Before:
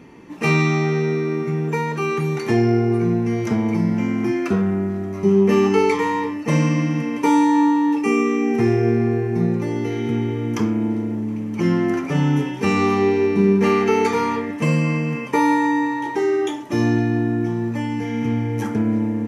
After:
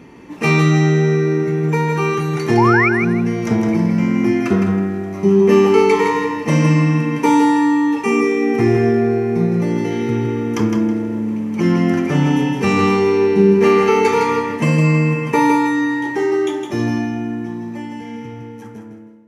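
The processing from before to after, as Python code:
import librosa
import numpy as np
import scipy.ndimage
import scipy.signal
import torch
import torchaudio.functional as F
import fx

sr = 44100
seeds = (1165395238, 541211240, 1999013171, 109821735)

p1 = fx.fade_out_tail(x, sr, length_s=3.67)
p2 = fx.spec_paint(p1, sr, seeds[0], shape='rise', start_s=2.57, length_s=0.32, low_hz=800.0, high_hz=2500.0, level_db=-19.0)
p3 = p2 + fx.echo_feedback(p2, sr, ms=161, feedback_pct=25, wet_db=-5.5, dry=0)
y = F.gain(torch.from_numpy(p3), 3.0).numpy()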